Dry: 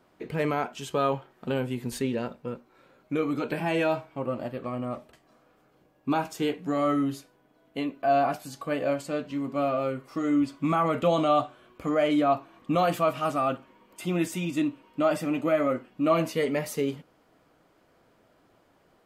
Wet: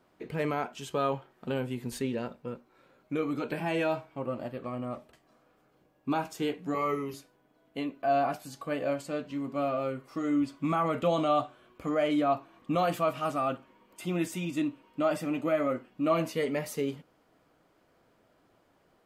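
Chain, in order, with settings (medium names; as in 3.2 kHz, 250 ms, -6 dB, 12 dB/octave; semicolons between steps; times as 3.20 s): 6.74–7.14 s: rippled EQ curve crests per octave 0.82, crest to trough 17 dB; trim -3.5 dB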